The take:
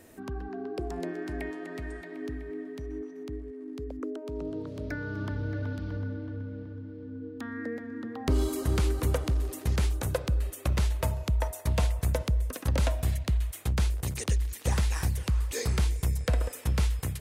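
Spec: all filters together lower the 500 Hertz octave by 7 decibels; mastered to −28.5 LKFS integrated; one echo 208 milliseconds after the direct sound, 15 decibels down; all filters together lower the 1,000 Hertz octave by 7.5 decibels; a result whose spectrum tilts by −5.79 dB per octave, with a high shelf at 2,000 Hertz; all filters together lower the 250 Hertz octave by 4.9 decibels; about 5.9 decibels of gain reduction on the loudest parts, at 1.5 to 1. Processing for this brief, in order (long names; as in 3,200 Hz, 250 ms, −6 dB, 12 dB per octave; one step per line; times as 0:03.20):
parametric band 250 Hz −4.5 dB
parametric band 500 Hz −5.5 dB
parametric band 1,000 Hz −7 dB
high-shelf EQ 2,000 Hz −3.5 dB
downward compressor 1.5 to 1, threshold −39 dBFS
single-tap delay 208 ms −15 dB
level +9 dB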